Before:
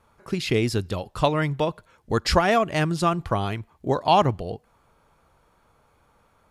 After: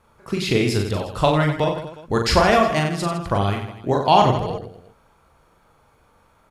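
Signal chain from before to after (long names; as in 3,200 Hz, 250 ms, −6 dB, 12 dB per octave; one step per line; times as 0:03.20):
0:02.79–0:03.31: downward compressor, threshold −24 dBFS, peak gain reduction 8.5 dB
reverse bouncing-ball delay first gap 40 ms, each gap 1.3×, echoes 5
level +2 dB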